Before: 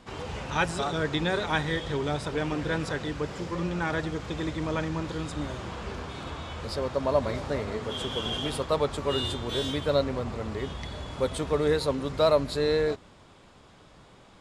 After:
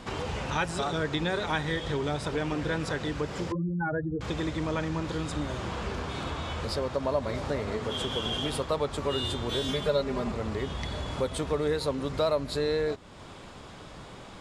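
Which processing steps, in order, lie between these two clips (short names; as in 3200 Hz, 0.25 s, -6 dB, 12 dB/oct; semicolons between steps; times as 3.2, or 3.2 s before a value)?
3.52–4.21 spectral contrast raised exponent 3.1; 9.68–10.32 comb 4.9 ms, depth 98%; compressor 2:1, threshold -43 dBFS, peak gain reduction 14.5 dB; gain +8.5 dB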